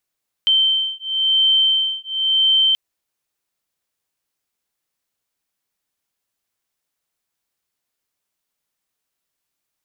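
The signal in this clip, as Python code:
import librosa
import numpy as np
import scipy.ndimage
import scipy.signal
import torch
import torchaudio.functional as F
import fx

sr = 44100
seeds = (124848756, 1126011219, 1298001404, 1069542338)

y = fx.two_tone_beats(sr, length_s=2.28, hz=3110.0, beat_hz=0.96, level_db=-17.5)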